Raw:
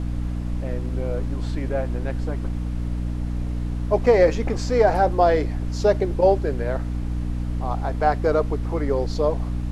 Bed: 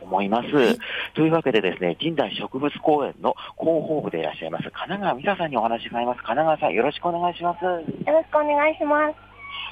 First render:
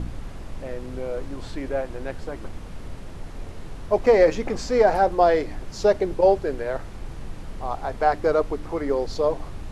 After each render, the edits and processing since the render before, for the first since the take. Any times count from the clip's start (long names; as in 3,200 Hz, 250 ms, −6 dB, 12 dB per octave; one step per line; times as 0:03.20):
hum removal 60 Hz, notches 5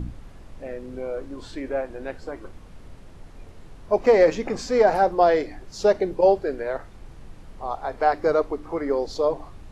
noise reduction from a noise print 8 dB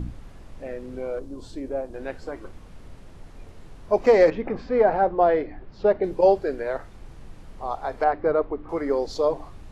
0:01.19–0:01.94: parametric band 1,900 Hz −13 dB 1.7 octaves
0:04.30–0:06.04: high-frequency loss of the air 410 metres
0:08.04–0:08.69: high-frequency loss of the air 420 metres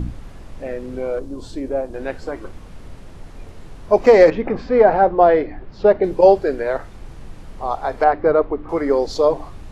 level +6.5 dB
brickwall limiter −1 dBFS, peak gain reduction 1 dB